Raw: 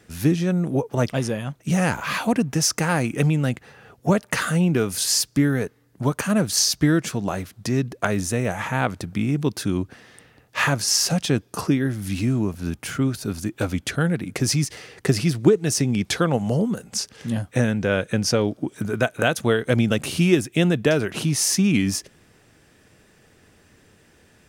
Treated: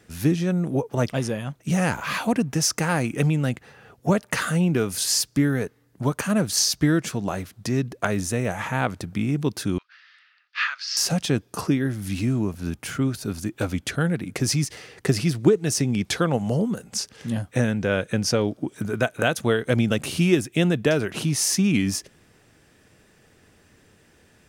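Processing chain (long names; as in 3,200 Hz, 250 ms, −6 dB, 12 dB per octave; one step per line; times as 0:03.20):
0:09.78–0:10.97: elliptic band-pass filter 1,300–4,800 Hz, stop band 70 dB
level −1.5 dB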